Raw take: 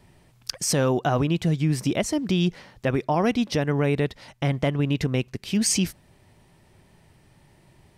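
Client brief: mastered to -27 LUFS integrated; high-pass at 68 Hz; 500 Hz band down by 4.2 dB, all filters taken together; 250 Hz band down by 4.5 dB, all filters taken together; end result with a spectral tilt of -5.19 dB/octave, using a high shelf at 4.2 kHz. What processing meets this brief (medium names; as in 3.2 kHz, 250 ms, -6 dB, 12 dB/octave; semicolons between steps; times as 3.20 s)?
high-pass 68 Hz; peaking EQ 250 Hz -5.5 dB; peaking EQ 500 Hz -3.5 dB; treble shelf 4.2 kHz -6.5 dB; trim +1 dB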